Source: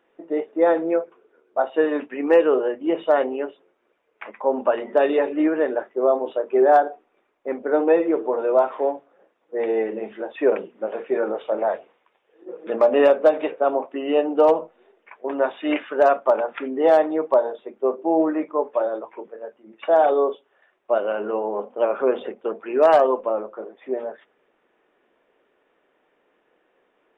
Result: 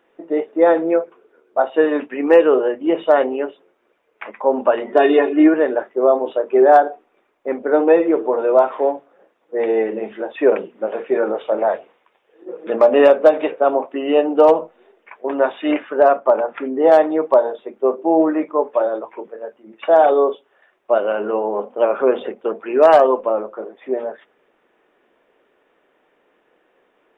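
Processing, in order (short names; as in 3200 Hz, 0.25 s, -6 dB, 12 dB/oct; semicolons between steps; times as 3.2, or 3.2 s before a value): 4.92–5.54 comb 2.8 ms, depth 77%; 15.71–16.92 LPF 1500 Hz 6 dB/oct; gain +4.5 dB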